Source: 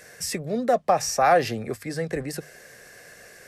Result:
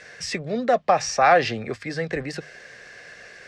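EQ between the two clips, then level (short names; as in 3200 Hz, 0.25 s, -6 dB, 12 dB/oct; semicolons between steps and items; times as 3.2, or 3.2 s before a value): air absorption 120 m; bell 3300 Hz +8.5 dB 2.9 oct; 0.0 dB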